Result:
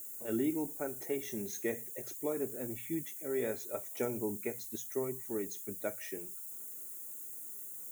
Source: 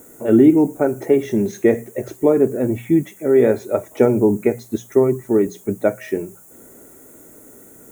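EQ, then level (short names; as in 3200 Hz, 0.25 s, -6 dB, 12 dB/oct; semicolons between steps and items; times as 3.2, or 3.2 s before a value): pre-emphasis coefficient 0.9; -2.5 dB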